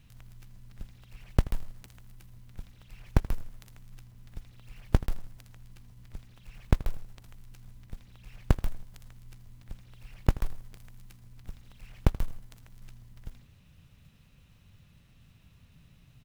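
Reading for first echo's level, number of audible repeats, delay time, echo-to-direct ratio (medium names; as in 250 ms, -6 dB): -18.0 dB, 3, 80 ms, -17.0 dB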